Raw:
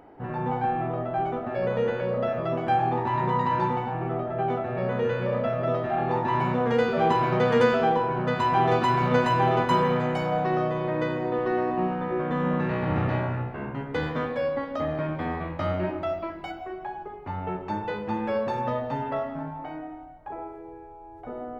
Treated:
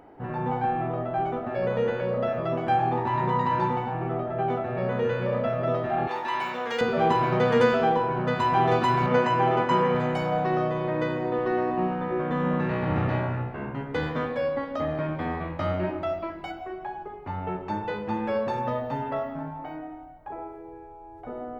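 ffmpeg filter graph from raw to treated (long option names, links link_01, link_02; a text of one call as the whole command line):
ffmpeg -i in.wav -filter_complex "[0:a]asettb=1/sr,asplit=3[link_01][link_02][link_03];[link_01]atrim=end=6.074[link_04];[link_02]atrim=start=6.07:end=6.81,asetpts=PTS-STARTPTS,afade=type=in:duration=0.004:curve=qsin,afade=type=out:start_time=0.736:duration=0.004:curve=qsin,highpass=300,tiltshelf=frequency=1400:gain=-8.5[link_05];[link_03]atrim=start=6.806[link_06];[link_04][link_05]acrossfade=duration=0.004:curve1=hsin:curve2=qsin[link_07];[link_07][link_06]acrossfade=duration=0.004:curve1=qsin:curve2=hsin,asettb=1/sr,asplit=3[link_08][link_09][link_10];[link_08]atrim=end=9.064[link_11];[link_09]atrim=start=9.06:end=9.95,asetpts=PTS-STARTPTS,afade=type=in:duration=0.004:curve=qsin,afade=type=out:start_time=0.886:duration=0.004:curve=qsin,highpass=130,lowpass=5800,equalizer=frequency=3800:width_type=o:width=0.25:gain=-9.5,asplit=2[link_12][link_13];[link_13]adelay=22,volume=-13dB[link_14];[link_12][link_14]amix=inputs=2:normalize=0,atrim=end_sample=39249[link_15];[link_10]atrim=start=9.946[link_16];[link_11][link_15]acrossfade=duration=0.004:curve1=hsin:curve2=qsin[link_17];[link_17][link_16]acrossfade=duration=0.004:curve1=qsin:curve2=hsin,asettb=1/sr,asplit=3[link_18][link_19][link_20];[link_18]atrim=end=18.594[link_21];[link_19]atrim=start=18.59:end=20.73,asetpts=PTS-STARTPTS,afade=type=in:duration=0.004:curve=qsin,afade=type=out:start_time=2.136:duration=0.004:curve=qsin,lowpass=frequency=2700:poles=1,aemphasis=mode=production:type=50fm[link_22];[link_20]atrim=start=20.726[link_23];[link_21][link_22]acrossfade=duration=0.004:curve1=hsin:curve2=qsin[link_24];[link_24][link_23]acrossfade=duration=0.004:curve1=qsin:curve2=hsin" out.wav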